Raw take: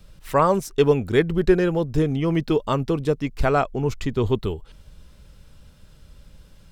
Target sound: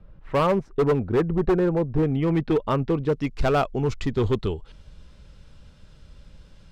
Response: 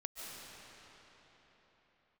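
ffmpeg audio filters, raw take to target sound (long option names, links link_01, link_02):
-af "asetnsamples=nb_out_samples=441:pad=0,asendcmd='2.03 lowpass f 2500;3.12 lowpass f 6300',lowpass=1300,asoftclip=type=hard:threshold=-16dB"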